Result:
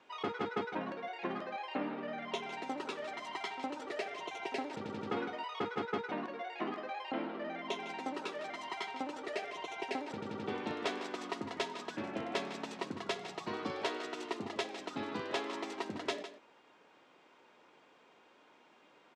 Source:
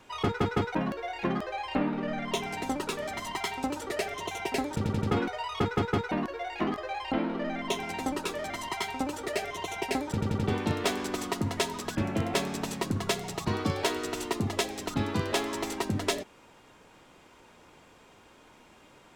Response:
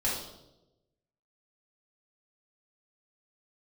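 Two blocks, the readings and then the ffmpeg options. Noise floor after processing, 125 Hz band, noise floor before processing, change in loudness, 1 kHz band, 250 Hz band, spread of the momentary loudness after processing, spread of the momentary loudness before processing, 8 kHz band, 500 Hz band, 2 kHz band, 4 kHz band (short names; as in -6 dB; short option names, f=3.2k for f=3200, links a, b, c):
-64 dBFS, -19.5 dB, -57 dBFS, -8.5 dB, -6.0 dB, -10.0 dB, 4 LU, 5 LU, -15.5 dB, -7.0 dB, -6.5 dB, -8.0 dB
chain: -af "highpass=280,lowpass=4.4k,aecho=1:1:155:0.266,volume=-6.5dB"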